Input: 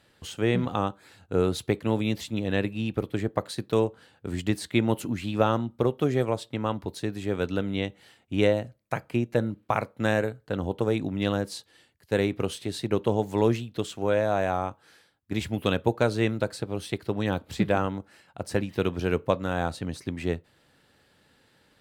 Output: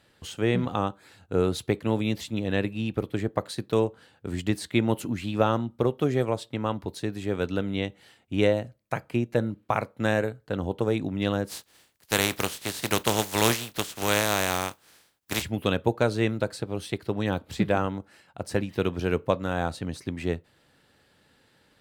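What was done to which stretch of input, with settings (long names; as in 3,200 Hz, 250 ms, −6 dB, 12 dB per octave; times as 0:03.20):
0:11.48–0:15.41: compressing power law on the bin magnitudes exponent 0.39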